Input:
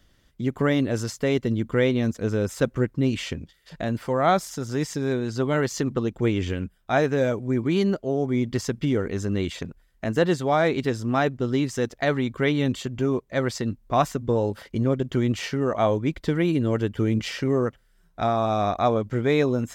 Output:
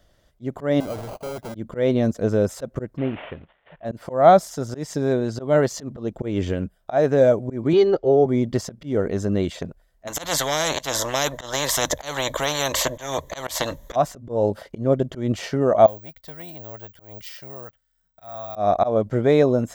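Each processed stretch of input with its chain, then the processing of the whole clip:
0:00.80–0:01.55: high-pass filter 93 Hz 6 dB per octave + sample-rate reduction 1,800 Hz + gain into a clipping stage and back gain 32.5 dB
0:02.97–0:03.85: variable-slope delta modulation 16 kbit/s + low-shelf EQ 450 Hz −7 dB
0:07.73–0:08.26: low-pass filter 5,400 Hz 24 dB per octave + comb filter 2.4 ms, depth 92%
0:10.07–0:13.96: EQ curve with evenly spaced ripples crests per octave 1.1, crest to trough 12 dB + every bin compressed towards the loudest bin 10 to 1
0:15.86–0:18.56: guitar amp tone stack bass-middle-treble 5-5-5 + bad sample-rate conversion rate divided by 2×, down filtered, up zero stuff + saturating transformer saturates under 900 Hz
whole clip: dynamic equaliser 230 Hz, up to +6 dB, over −35 dBFS, Q 0.93; volume swells 170 ms; graphic EQ with 15 bands 250 Hz −4 dB, 630 Hz +11 dB, 2,500 Hz −4 dB

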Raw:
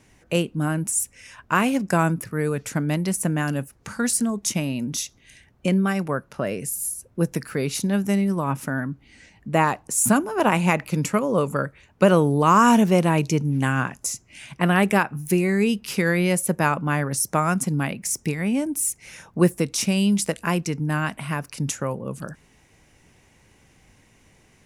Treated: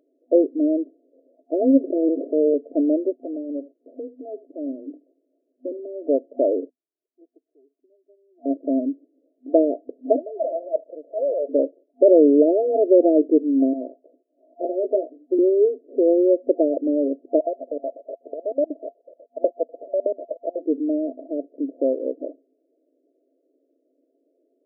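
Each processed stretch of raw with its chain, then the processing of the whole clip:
0:01.84–0:02.54: lower of the sound and its delayed copy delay 0.73 ms + Gaussian smoothing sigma 2 samples + envelope flattener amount 70%
0:03.12–0:06.09: downward compressor 2 to 1, threshold −37 dBFS + single-tap delay 79 ms −19 dB
0:06.70–0:08.46: first-order pre-emphasis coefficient 0.97 + downward compressor 3 to 1, threshold −39 dBFS + phaser with its sweep stopped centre 350 Hz, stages 8
0:10.16–0:11.49: high-pass filter 700 Hz 24 dB per octave + leveller curve on the samples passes 1 + transient designer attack −10 dB, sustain +4 dB
0:13.73–0:15.39: de-essing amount 35% + resonant band-pass 1,600 Hz, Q 0.51 + double-tracking delay 16 ms −6 dB
0:17.39–0:20.59: spectral envelope flattened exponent 0.1 + auto-filter high-pass square 8.1 Hz 570–1,600 Hz
whole clip: noise gate −44 dBFS, range −11 dB; brick-wall band-pass 250–690 Hz; boost into a limiter +12.5 dB; level −4 dB

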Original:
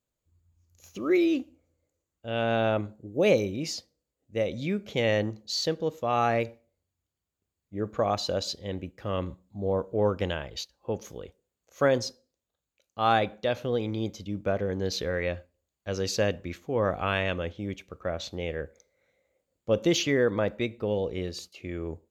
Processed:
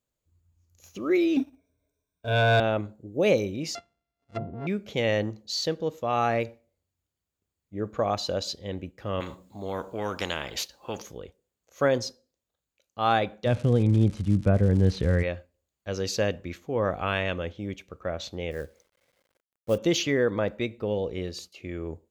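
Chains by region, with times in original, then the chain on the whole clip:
0:01.36–0:02.60: EQ curve with evenly spaced ripples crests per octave 1.6, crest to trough 18 dB + leveller curve on the samples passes 1
0:03.75–0:04.67: samples sorted by size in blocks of 64 samples + treble cut that deepens with the level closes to 310 Hz, closed at −25 dBFS + high-frequency loss of the air 82 metres
0:09.20–0:11.02: low-shelf EQ 120 Hz −12 dB + every bin compressed towards the loudest bin 2 to 1
0:13.45–0:15.22: bass and treble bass +15 dB, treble −13 dB + surface crackle 200 per second −33 dBFS + low-pass filter 10,000 Hz 24 dB per octave
0:18.51–0:19.78: high-shelf EQ 2,800 Hz −6 dB + log-companded quantiser 6 bits
whole clip: no processing

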